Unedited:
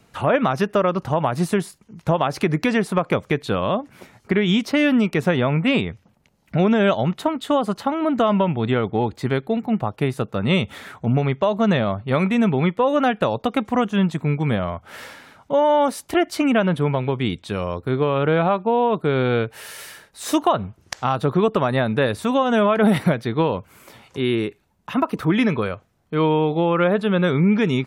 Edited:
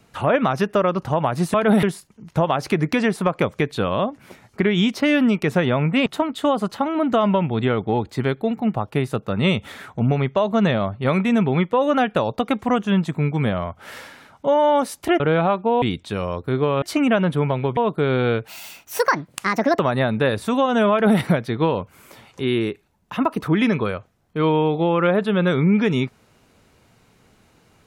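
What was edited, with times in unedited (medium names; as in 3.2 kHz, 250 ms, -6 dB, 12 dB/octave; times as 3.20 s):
5.77–7.12 s: delete
16.26–17.21 s: swap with 18.21–18.83 s
19.54–21.56 s: speed 154%
22.68–22.97 s: copy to 1.54 s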